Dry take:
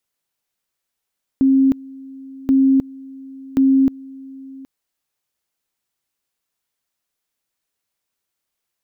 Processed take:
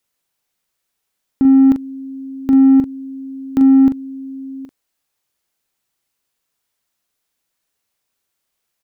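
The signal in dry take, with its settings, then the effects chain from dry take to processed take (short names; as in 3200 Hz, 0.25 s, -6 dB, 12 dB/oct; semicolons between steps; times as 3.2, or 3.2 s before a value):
two-level tone 268 Hz -10 dBFS, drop 23 dB, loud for 0.31 s, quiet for 0.77 s, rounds 3
in parallel at -4.5 dB: soft clip -20.5 dBFS; on the sum: doubler 41 ms -8 dB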